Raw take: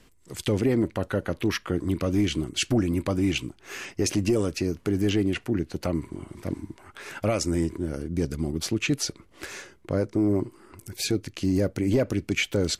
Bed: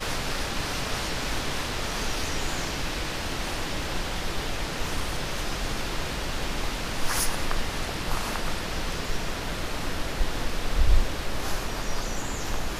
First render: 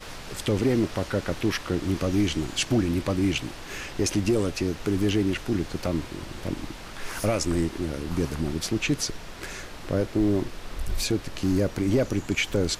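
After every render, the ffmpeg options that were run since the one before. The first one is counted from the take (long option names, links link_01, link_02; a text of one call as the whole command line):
ffmpeg -i in.wav -i bed.wav -filter_complex "[1:a]volume=-10dB[link_01];[0:a][link_01]amix=inputs=2:normalize=0" out.wav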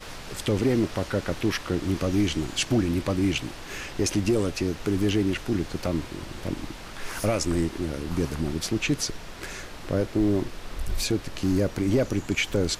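ffmpeg -i in.wav -af anull out.wav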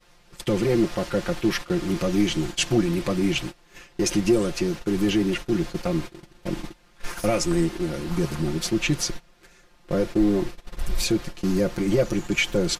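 ffmpeg -i in.wav -af "agate=range=-20dB:threshold=-32dB:ratio=16:detection=peak,aecho=1:1:5.7:0.82" out.wav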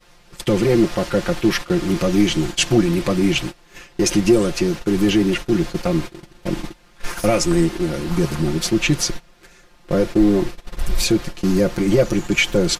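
ffmpeg -i in.wav -af "volume=5.5dB" out.wav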